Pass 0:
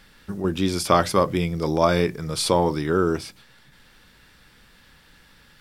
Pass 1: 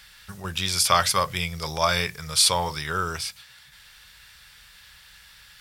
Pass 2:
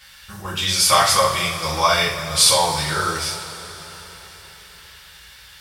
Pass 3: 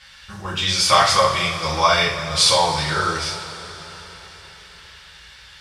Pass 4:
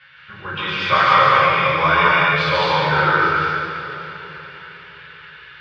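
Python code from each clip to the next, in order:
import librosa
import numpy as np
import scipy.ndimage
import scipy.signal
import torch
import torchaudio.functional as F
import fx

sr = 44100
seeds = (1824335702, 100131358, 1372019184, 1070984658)

y1 = scipy.signal.sosfilt(scipy.signal.butter(2, 43.0, 'highpass', fs=sr, output='sos'), x)
y1 = fx.tone_stack(y1, sr, knobs='10-0-10')
y1 = y1 * 10.0 ** (8.5 / 20.0)
y2 = fx.rev_double_slope(y1, sr, seeds[0], early_s=0.44, late_s=4.4, knee_db=-18, drr_db=-8.5)
y2 = y2 * 10.0 ** (-3.0 / 20.0)
y3 = scipy.signal.sosfilt(scipy.signal.butter(2, 6200.0, 'lowpass', fs=sr, output='sos'), y2)
y3 = y3 * 10.0 ** (1.0 / 20.0)
y4 = fx.cabinet(y3, sr, low_hz=140.0, low_slope=12, high_hz=3000.0, hz=(140.0, 200.0, 450.0, 730.0, 1500.0, 2400.0), db=(10, -7, 3, -9, 7, 3))
y4 = fx.rev_plate(y4, sr, seeds[1], rt60_s=2.1, hf_ratio=0.8, predelay_ms=115, drr_db=-4.5)
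y4 = y4 * 10.0 ** (-2.0 / 20.0)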